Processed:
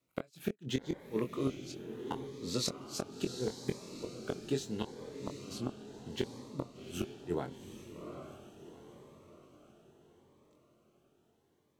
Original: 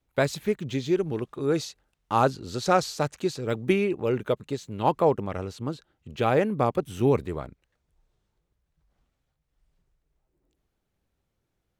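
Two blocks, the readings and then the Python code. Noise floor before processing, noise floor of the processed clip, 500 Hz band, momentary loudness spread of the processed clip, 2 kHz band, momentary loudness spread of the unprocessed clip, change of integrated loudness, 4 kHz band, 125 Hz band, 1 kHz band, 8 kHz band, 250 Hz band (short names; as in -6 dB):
-79 dBFS, -73 dBFS, -14.0 dB, 17 LU, -16.0 dB, 12 LU, -13.0 dB, -4.5 dB, -12.0 dB, -20.0 dB, -4.0 dB, -9.5 dB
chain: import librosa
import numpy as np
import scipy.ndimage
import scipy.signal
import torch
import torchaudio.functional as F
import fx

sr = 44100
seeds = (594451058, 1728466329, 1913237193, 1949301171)

y = scipy.signal.sosfilt(scipy.signal.butter(2, 170.0, 'highpass', fs=sr, output='sos'), x)
y = fx.gate_flip(y, sr, shuts_db=-19.0, range_db=-36)
y = fx.doubler(y, sr, ms=23.0, db=-6.0)
y = fx.echo_diffused(y, sr, ms=784, feedback_pct=48, wet_db=-8.5)
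y = fx.notch_cascade(y, sr, direction='rising', hz=0.75)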